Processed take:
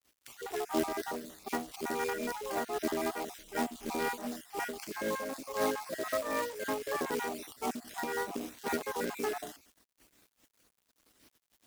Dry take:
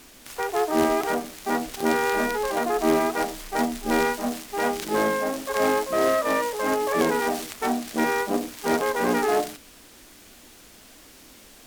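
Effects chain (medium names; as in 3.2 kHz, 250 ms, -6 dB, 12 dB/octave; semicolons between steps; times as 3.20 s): random holes in the spectrogram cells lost 34%; high-pass 47 Hz 12 dB/octave; gate -49 dBFS, range -12 dB; companded quantiser 4-bit; tremolo 3.9 Hz, depth 43%; trim -8 dB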